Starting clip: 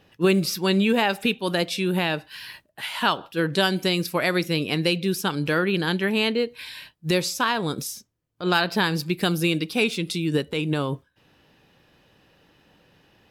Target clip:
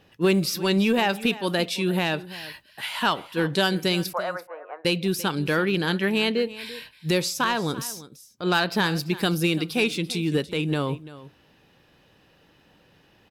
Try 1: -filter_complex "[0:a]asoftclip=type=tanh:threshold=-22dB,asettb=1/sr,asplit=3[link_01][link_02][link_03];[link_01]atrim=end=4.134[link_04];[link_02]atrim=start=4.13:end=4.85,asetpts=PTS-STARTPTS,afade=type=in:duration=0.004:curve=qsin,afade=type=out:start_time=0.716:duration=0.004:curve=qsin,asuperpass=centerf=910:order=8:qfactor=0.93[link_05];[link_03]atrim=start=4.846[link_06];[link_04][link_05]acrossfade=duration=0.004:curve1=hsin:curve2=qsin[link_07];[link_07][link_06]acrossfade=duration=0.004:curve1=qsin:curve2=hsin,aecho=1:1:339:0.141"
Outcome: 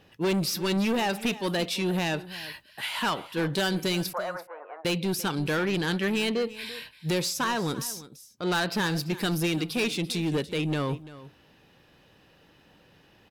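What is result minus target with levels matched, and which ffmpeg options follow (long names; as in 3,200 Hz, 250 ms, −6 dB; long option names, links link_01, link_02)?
soft clipping: distortion +14 dB
-filter_complex "[0:a]asoftclip=type=tanh:threshold=-10.5dB,asettb=1/sr,asplit=3[link_01][link_02][link_03];[link_01]atrim=end=4.134[link_04];[link_02]atrim=start=4.13:end=4.85,asetpts=PTS-STARTPTS,afade=type=in:duration=0.004:curve=qsin,afade=type=out:start_time=0.716:duration=0.004:curve=qsin,asuperpass=centerf=910:order=8:qfactor=0.93[link_05];[link_03]atrim=start=4.846[link_06];[link_04][link_05]acrossfade=duration=0.004:curve1=hsin:curve2=qsin[link_07];[link_07][link_06]acrossfade=duration=0.004:curve1=qsin:curve2=hsin,aecho=1:1:339:0.141"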